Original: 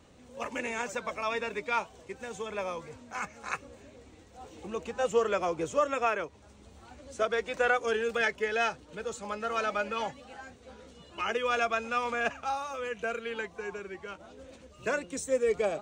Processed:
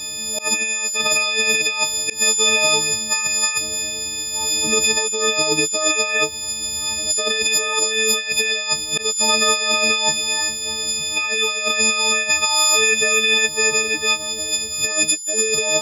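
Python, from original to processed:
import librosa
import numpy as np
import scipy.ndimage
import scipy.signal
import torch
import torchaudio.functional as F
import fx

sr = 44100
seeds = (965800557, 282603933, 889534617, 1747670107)

y = fx.freq_snap(x, sr, grid_st=6)
y = fx.high_shelf_res(y, sr, hz=2200.0, db=13.5, q=1.5)
y = fx.notch(y, sr, hz=3200.0, q=5.1)
y = fx.over_compress(y, sr, threshold_db=-28.0, ratio=-1.0)
y = fx.auto_swell(y, sr, attack_ms=132.0)
y = y * 10.0 ** (9.0 / 20.0)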